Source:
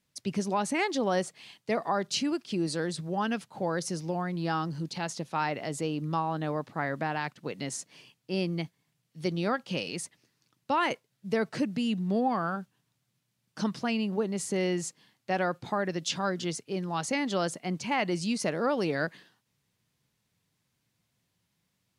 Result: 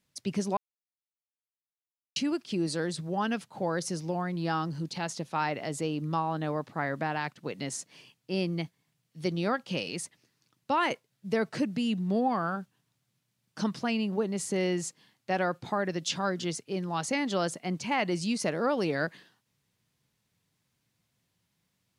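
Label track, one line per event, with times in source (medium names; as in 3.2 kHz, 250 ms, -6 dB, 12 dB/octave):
0.570000	2.160000	mute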